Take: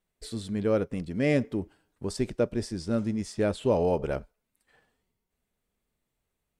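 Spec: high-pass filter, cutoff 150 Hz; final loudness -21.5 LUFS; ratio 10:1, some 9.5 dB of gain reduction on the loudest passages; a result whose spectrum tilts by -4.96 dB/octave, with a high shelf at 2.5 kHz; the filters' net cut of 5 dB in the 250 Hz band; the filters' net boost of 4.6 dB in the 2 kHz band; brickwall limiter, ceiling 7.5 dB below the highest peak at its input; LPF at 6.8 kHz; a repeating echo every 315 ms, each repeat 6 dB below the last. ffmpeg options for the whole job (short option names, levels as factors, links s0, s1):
-af "highpass=150,lowpass=6800,equalizer=f=250:t=o:g=-5.5,equalizer=f=2000:t=o:g=7,highshelf=f=2500:g=-3.5,acompressor=threshold=0.0316:ratio=10,alimiter=level_in=1.33:limit=0.0631:level=0:latency=1,volume=0.75,aecho=1:1:315|630|945|1260|1575|1890:0.501|0.251|0.125|0.0626|0.0313|0.0157,volume=7.08"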